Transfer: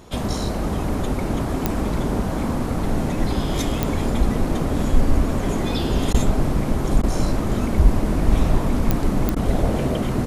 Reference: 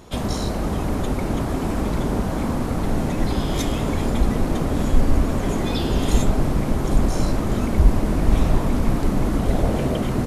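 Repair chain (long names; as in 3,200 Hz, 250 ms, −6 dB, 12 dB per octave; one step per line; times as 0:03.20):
click removal
repair the gap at 0:06.13/0:07.02/0:09.35, 12 ms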